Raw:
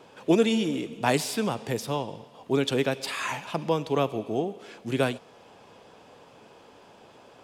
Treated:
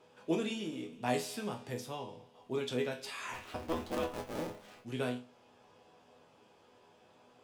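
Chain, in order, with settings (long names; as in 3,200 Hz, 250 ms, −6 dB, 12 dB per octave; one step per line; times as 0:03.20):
0:03.33–0:04.81: sub-harmonics by changed cycles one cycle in 2, inverted
resonators tuned to a chord E2 major, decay 0.3 s
level +1 dB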